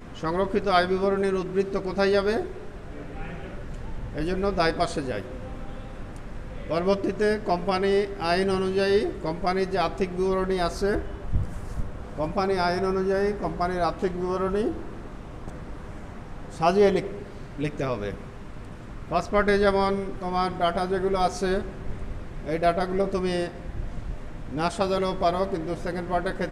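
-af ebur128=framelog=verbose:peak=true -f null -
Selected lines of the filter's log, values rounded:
Integrated loudness:
  I:         -25.8 LUFS
  Threshold: -36.9 LUFS
Loudness range:
  LRA:         4.4 LU
  Threshold: -47.0 LUFS
  LRA low:   -29.3 LUFS
  LRA high:  -25.0 LUFS
True peak:
  Peak:       -7.4 dBFS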